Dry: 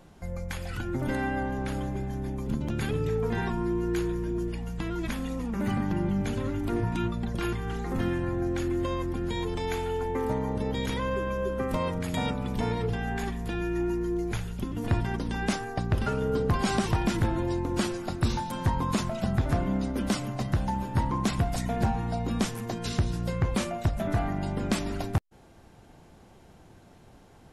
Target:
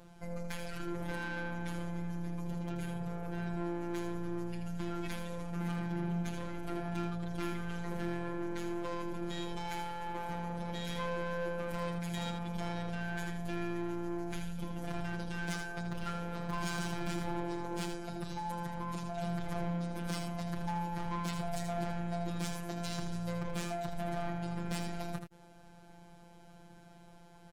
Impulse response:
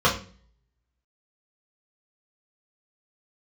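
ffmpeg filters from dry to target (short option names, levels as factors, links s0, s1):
-filter_complex "[0:a]asettb=1/sr,asplit=3[s0][s1][s2];[s0]atrim=end=2.754[s3];[s1]atrim=start=2.75:end=3.57,asetpts=PTS-STARTPTS,afade=t=in:d=0.004:c=qsin,afade=t=out:st=0.816:d=0.004:c=qsin,equalizer=f=2300:w=0.32:g=-7.5[s4];[s2]atrim=start=3.566[s5];[s3][s4]acrossfade=d=0.004:c1=hsin:c2=qsin[s6];[s6][s5]acrossfade=d=0.004:c1=qsin:c2=hsin,asettb=1/sr,asplit=3[s7][s8][s9];[s7]atrim=end=17.854[s10];[s8]atrim=start=17.85:end=19.18,asetpts=PTS-STARTPTS,afade=t=in:d=0.004:c=qsin,afade=t=out:st=1.326:d=0.004:c=qsin,acrossover=split=150|1100[s11][s12][s13];[s11]acompressor=threshold=0.01:ratio=4[s14];[s12]acompressor=threshold=0.02:ratio=4[s15];[s13]acompressor=threshold=0.00501:ratio=4[s16];[s14][s15][s16]amix=inputs=3:normalize=0[s17];[s9]atrim=start=19.176[s18];[s10][s17]acrossfade=d=0.004:c1=hsin:c2=qsin[s19];[s19][s18]acrossfade=d=0.004:c1=qsin:c2=hsin,aeval=exprs='0.15*(cos(1*acos(clip(val(0)/0.15,-1,1)))-cos(1*PI/2))+0.0119*(cos(8*acos(clip(val(0)/0.15,-1,1)))-cos(8*PI/2))':c=same,asoftclip=type=tanh:threshold=0.0316,afftfilt=real='hypot(re,im)*cos(PI*b)':imag='0':win_size=1024:overlap=0.75,aecho=1:1:80:0.447"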